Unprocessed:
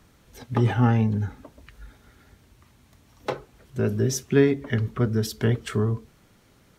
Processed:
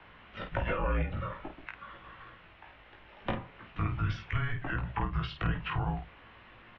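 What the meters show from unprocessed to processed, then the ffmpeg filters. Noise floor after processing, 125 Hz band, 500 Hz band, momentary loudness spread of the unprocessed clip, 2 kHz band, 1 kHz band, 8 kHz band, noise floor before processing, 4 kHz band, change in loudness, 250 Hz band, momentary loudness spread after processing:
−56 dBFS, −10.0 dB, −14.0 dB, 13 LU, −2.5 dB, −2.5 dB, below −30 dB, −58 dBFS, −6.5 dB, −10.5 dB, −14.5 dB, 21 LU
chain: -filter_complex "[0:a]tiltshelf=frequency=820:gain=-5.5,alimiter=limit=-20.5dB:level=0:latency=1:release=109,highpass=frequency=210:width_type=q:width=0.5412,highpass=frequency=210:width_type=q:width=1.307,lowpass=frequency=3200:width_type=q:width=0.5176,lowpass=frequency=3200:width_type=q:width=0.7071,lowpass=frequency=3200:width_type=q:width=1.932,afreqshift=-290,acrossover=split=130|840[link_01][link_02][link_03];[link_01]acompressor=threshold=-39dB:ratio=4[link_04];[link_02]acompressor=threshold=-40dB:ratio=4[link_05];[link_03]acompressor=threshold=-44dB:ratio=4[link_06];[link_04][link_05][link_06]amix=inputs=3:normalize=0,aecho=1:1:18|50:0.668|0.447,volume=5dB"

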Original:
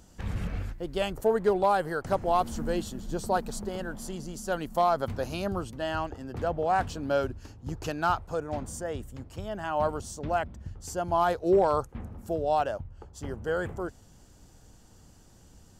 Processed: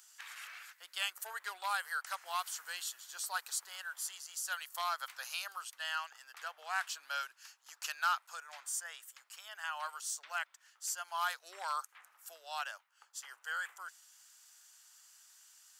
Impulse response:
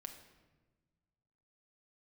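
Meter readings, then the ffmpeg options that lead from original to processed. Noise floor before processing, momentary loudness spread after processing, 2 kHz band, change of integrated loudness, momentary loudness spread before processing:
−55 dBFS, 18 LU, −0.5 dB, −9.5 dB, 13 LU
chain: -af "highpass=frequency=1300:width=0.5412,highpass=frequency=1300:width=1.3066,highshelf=frequency=7800:gain=7.5"

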